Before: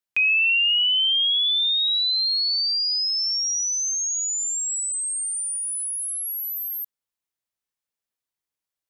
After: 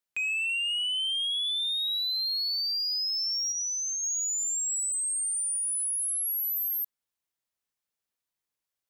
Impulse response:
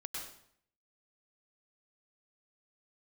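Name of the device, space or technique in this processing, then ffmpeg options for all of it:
soft clipper into limiter: -filter_complex "[0:a]asettb=1/sr,asplit=3[a][b][c];[a]atrim=end=3.524[d];[b]atrim=start=3.52:end=4.03,asetpts=PTS-STARTPTS,afade=t=in:d=0.004:c=qsin,afade=t=out:st=0.506:d=0.004:c=qsin,acrossover=split=3200[e][f];[f]acompressor=threshold=-32dB:ratio=4:attack=1:release=60[g];[e][g]amix=inputs=2:normalize=0[h];[c]atrim=start=4.026[i];[d][h]acrossfade=d=0.004:c1=hsin:c2=qsin[j];[j][i]acrossfade=d=0.004:c1=qsin:c2=hsin,asoftclip=type=tanh:threshold=-18.5dB,alimiter=level_in=3dB:limit=-24dB:level=0:latency=1,volume=-3dB"

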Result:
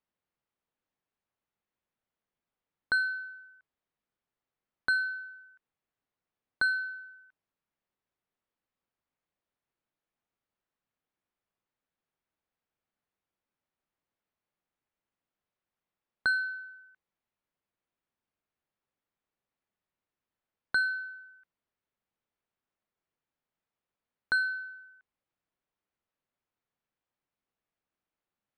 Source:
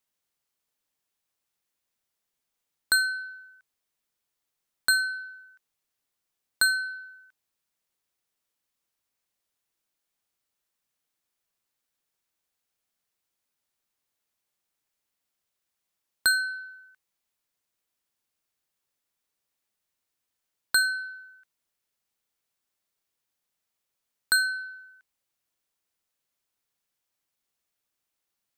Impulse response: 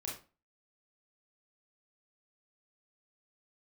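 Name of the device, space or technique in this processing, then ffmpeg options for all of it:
phone in a pocket: -af "lowpass=3.4k,equalizer=f=190:t=o:w=0.77:g=2,highshelf=f=2.4k:g=-10.5"

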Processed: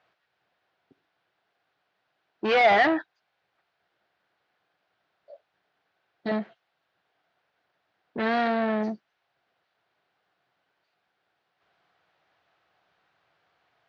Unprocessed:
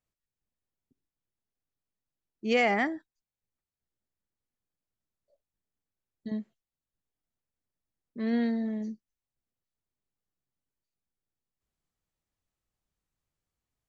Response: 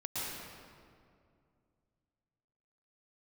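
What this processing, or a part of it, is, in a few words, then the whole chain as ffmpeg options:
overdrive pedal into a guitar cabinet: -filter_complex "[0:a]asplit=2[a][b];[b]highpass=f=720:p=1,volume=33dB,asoftclip=type=tanh:threshold=-12.5dB[c];[a][c]amix=inputs=2:normalize=0,lowpass=f=2.8k:p=1,volume=-6dB,highpass=90,equalizer=f=240:t=q:w=4:g=-9,equalizer=f=710:t=q:w=4:g=8,equalizer=f=1.5k:t=q:w=4:g=6,lowpass=f=4.3k:w=0.5412,lowpass=f=4.3k:w=1.3066,volume=-2.5dB"

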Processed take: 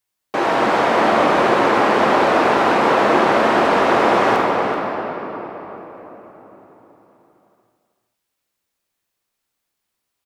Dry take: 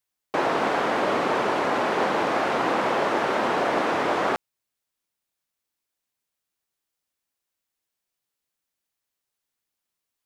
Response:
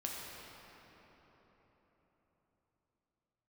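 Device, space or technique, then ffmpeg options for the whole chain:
cave: -filter_complex "[0:a]aecho=1:1:380:0.282[a];[1:a]atrim=start_sample=2205[b];[a][b]afir=irnorm=-1:irlink=0,volume=6.5dB"

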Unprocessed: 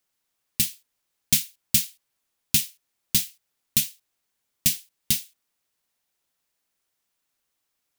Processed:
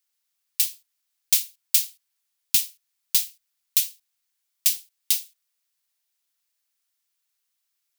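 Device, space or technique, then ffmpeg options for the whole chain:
presence and air boost: -af "tiltshelf=f=690:g=-9.5,equalizer=f=4.7k:t=o:w=0.77:g=2,highshelf=f=10k:g=4,volume=-11dB"

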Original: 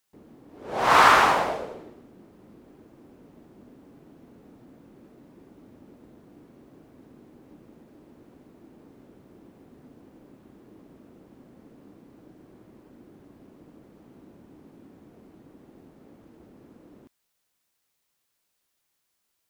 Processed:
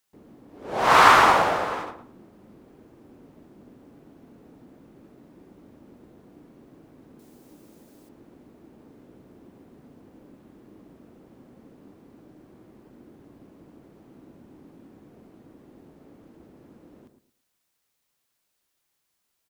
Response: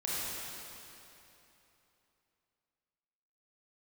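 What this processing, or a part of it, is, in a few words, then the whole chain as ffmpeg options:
keyed gated reverb: -filter_complex "[0:a]asplit=3[a][b][c];[1:a]atrim=start_sample=2205[d];[b][d]afir=irnorm=-1:irlink=0[e];[c]apad=whole_len=859762[f];[e][f]sidechaingate=range=-33dB:threshold=-43dB:ratio=16:detection=peak,volume=-13.5dB[g];[a][g]amix=inputs=2:normalize=0,asettb=1/sr,asplit=3[h][i][j];[h]atrim=end=7.194[k];[i]atrim=start=7.19:end=8.09,asetpts=PTS-STARTPTS,afade=t=in:d=0.004:c=qsin,afade=t=out:st=0.896:d=0.004:c=qsin,bass=f=250:g=-3,treble=f=4k:g=14[l];[j]atrim=start=8.086[m];[k][l]acrossfade=d=0.004:c1=hsin:c2=qsin[n];[n][m]acrossfade=d=0.004:c1=qsin:c2=hsin,asplit=2[o][p];[p]adelay=112,lowpass=f=1.3k:p=1,volume=-7.5dB,asplit=2[q][r];[r]adelay=112,lowpass=f=1.3k:p=1,volume=0.27,asplit=2[s][t];[t]adelay=112,lowpass=f=1.3k:p=1,volume=0.27[u];[o][q][s][u]amix=inputs=4:normalize=0"

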